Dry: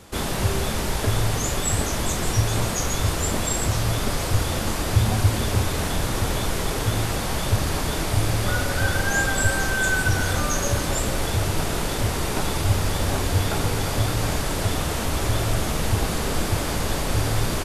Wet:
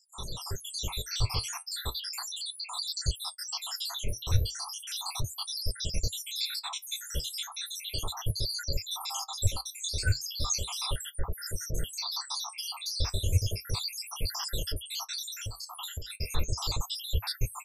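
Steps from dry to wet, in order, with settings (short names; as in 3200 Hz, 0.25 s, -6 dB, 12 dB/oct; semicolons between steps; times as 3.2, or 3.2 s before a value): random spectral dropouts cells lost 83%; AGC gain up to 8 dB; flange 0.35 Hz, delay 4.2 ms, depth 8.3 ms, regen -57%; EQ curve 100 Hz 0 dB, 260 Hz -17 dB, 450 Hz -7 dB, 700 Hz -11 dB, 1000 Hz -1 dB, 1900 Hz -9 dB, 4600 Hz +11 dB, 7700 Hz 0 dB; 15.37–16.1 compressor 5:1, threshold -30 dBFS, peak gain reduction 10.5 dB; gain -5 dB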